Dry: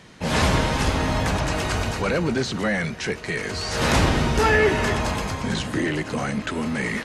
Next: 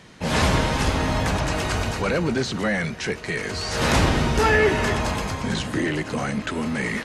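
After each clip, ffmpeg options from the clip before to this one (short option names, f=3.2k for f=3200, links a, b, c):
-af anull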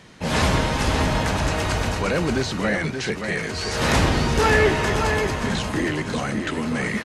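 -af "aecho=1:1:579:0.473"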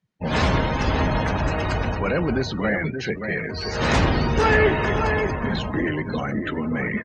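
-af "afftdn=nr=36:nf=-30"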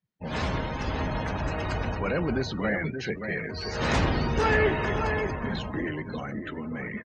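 -af "dynaudnorm=f=250:g=13:m=6dB,volume=-9dB"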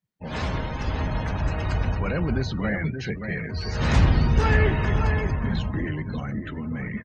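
-af "asubboost=boost=3.5:cutoff=200"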